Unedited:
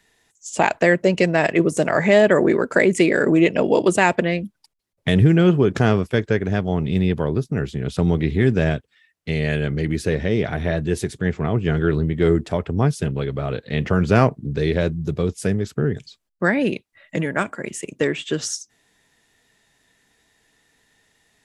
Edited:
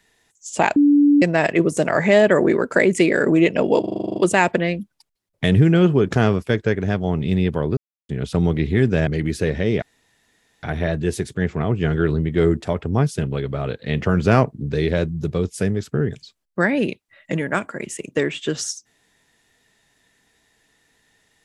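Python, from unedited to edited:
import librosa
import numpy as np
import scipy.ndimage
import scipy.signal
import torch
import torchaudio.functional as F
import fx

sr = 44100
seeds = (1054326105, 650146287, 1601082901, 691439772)

y = fx.edit(x, sr, fx.bleep(start_s=0.76, length_s=0.46, hz=289.0, db=-10.0),
    fx.stutter(start_s=3.8, slice_s=0.04, count=10),
    fx.silence(start_s=7.41, length_s=0.32),
    fx.cut(start_s=8.71, length_s=1.01),
    fx.insert_room_tone(at_s=10.47, length_s=0.81), tone=tone)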